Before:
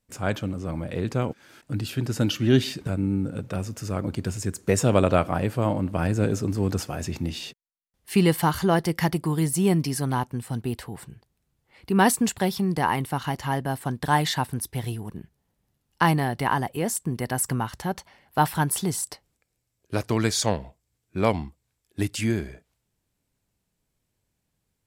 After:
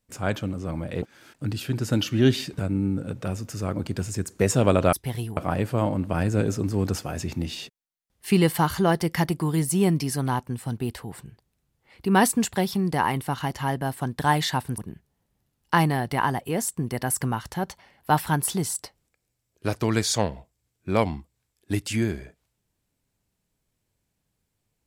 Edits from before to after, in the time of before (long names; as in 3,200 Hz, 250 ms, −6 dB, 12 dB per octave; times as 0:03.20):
0:01.02–0:01.30: remove
0:14.62–0:15.06: move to 0:05.21